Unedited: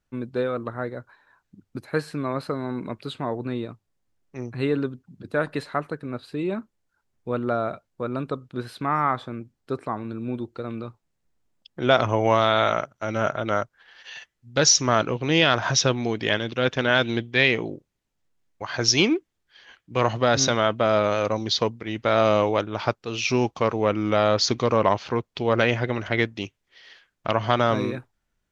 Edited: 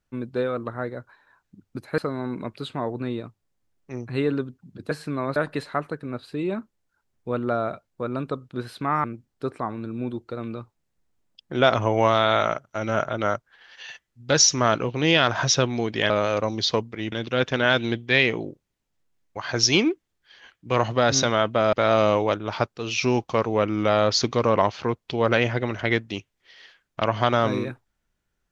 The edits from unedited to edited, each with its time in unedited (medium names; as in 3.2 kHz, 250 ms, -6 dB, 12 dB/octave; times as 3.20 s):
1.98–2.43 s: move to 5.36 s
9.04–9.31 s: delete
20.98–22.00 s: move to 16.37 s